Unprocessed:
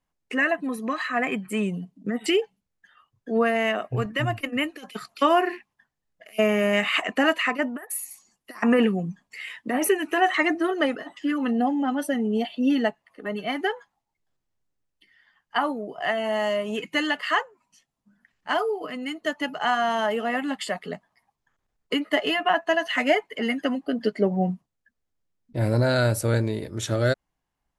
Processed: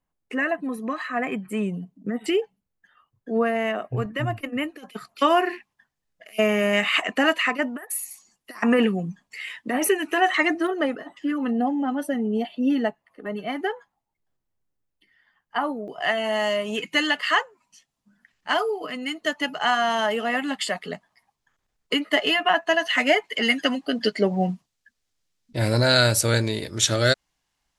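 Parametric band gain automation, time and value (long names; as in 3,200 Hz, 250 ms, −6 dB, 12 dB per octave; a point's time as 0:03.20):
parametric band 5,000 Hz 2.9 octaves
−5.5 dB
from 0:05.18 +3 dB
from 0:10.67 −5 dB
from 0:15.88 +6 dB
from 0:23.24 +13.5 dB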